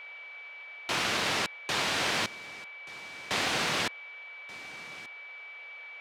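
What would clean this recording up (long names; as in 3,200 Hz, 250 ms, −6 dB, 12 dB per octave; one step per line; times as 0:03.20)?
notch filter 2,300 Hz, Q 30
noise reduction from a noise print 30 dB
echo removal 1,181 ms −19 dB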